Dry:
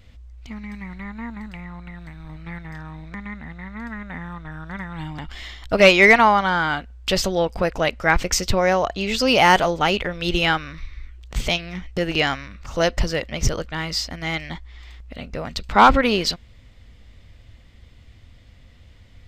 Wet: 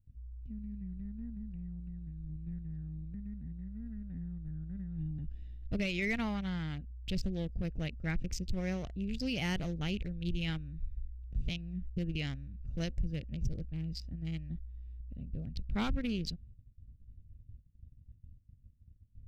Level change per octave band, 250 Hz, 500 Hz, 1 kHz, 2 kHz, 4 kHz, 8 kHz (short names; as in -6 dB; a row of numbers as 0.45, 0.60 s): -10.5, -24.0, -30.0, -22.5, -20.0, -23.0 dB